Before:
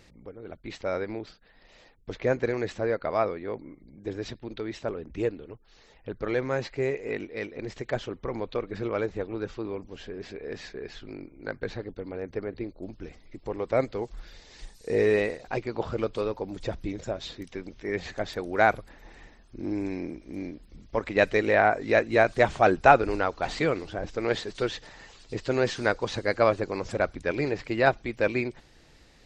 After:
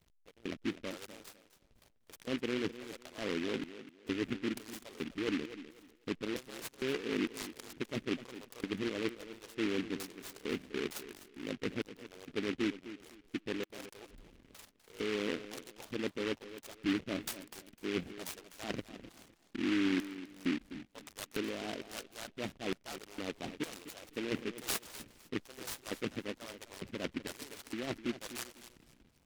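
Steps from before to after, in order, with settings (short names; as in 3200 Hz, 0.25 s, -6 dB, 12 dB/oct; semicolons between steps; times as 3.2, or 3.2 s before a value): high shelf 4100 Hz -9.5 dB; reverse; compressor 20:1, threshold -34 dBFS, peak gain reduction 23.5 dB; reverse; LFO band-pass square 1.1 Hz 260–3300 Hz; backlash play -58.5 dBFS; on a send: tape echo 0.252 s, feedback 27%, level -12 dB, low-pass 5400 Hz; on the sum: noise-modulated delay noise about 2100 Hz, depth 0.17 ms; gain +10 dB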